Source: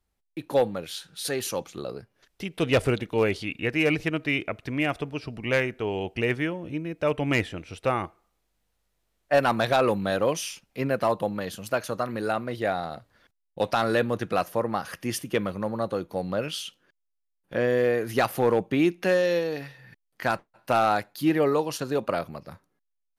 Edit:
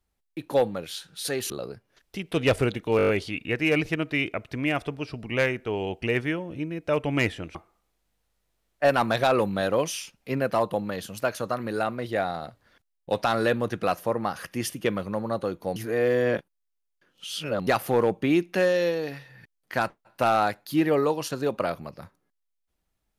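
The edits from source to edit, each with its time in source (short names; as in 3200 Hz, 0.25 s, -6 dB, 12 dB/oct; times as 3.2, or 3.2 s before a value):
1.5–1.76 cut
3.23 stutter 0.02 s, 7 plays
7.69–8.04 cut
16.25–18.16 reverse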